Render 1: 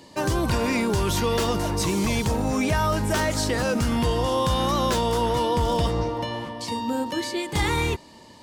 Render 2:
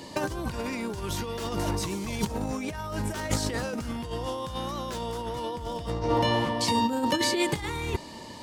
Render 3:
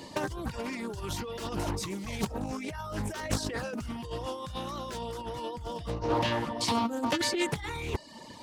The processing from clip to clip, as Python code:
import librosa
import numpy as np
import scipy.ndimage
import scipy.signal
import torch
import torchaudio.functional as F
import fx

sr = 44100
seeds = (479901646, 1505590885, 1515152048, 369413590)

y1 = fx.over_compress(x, sr, threshold_db=-28.0, ratio=-0.5)
y2 = fx.dereverb_blind(y1, sr, rt60_s=0.74)
y2 = fx.doppler_dist(y2, sr, depth_ms=0.45)
y2 = y2 * 10.0 ** (-2.0 / 20.0)